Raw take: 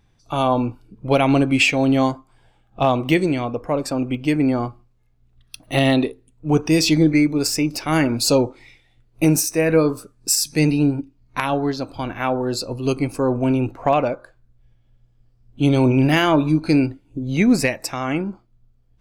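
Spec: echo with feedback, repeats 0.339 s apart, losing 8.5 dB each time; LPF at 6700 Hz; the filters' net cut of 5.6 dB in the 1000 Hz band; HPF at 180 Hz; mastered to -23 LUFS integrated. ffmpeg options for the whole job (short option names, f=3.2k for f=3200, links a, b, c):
-af "highpass=180,lowpass=6.7k,equalizer=f=1k:t=o:g=-8,aecho=1:1:339|678|1017|1356:0.376|0.143|0.0543|0.0206,volume=-1.5dB"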